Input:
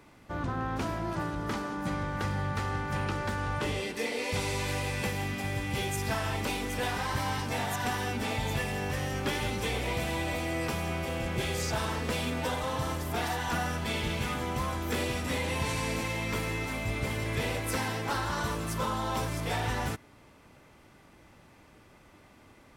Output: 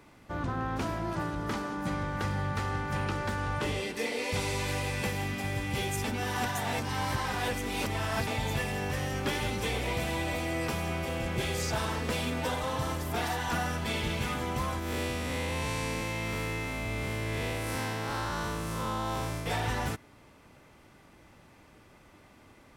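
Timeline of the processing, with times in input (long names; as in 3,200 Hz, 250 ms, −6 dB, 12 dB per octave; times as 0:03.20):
0:06.04–0:08.27: reverse
0:14.79–0:19.46: spectrum smeared in time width 165 ms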